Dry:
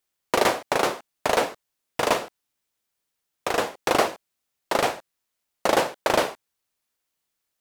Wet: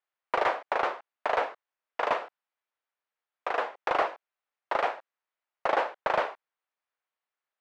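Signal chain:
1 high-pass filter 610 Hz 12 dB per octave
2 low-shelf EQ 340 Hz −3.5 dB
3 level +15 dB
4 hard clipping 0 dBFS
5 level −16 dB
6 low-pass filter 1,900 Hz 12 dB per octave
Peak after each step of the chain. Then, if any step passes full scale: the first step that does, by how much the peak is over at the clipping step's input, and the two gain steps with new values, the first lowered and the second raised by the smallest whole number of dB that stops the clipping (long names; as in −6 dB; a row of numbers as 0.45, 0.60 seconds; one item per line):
−6.5, −7.5, +7.5, 0.0, −16.0, −15.5 dBFS
step 3, 7.5 dB
step 3 +7 dB, step 5 −8 dB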